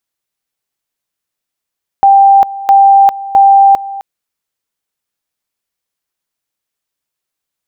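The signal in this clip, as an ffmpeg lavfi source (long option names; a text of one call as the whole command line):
ffmpeg -f lavfi -i "aevalsrc='pow(10,(-2-17.5*gte(mod(t,0.66),0.4))/20)*sin(2*PI*789*t)':duration=1.98:sample_rate=44100" out.wav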